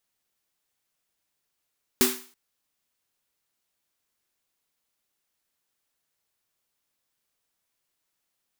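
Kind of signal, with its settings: snare drum length 0.33 s, tones 250 Hz, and 380 Hz, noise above 780 Hz, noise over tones 1.5 dB, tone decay 0.34 s, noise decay 0.43 s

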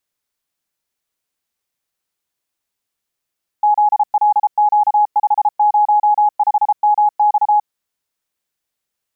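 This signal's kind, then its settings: Morse "ZLQ505MX" 33 wpm 837 Hz -9 dBFS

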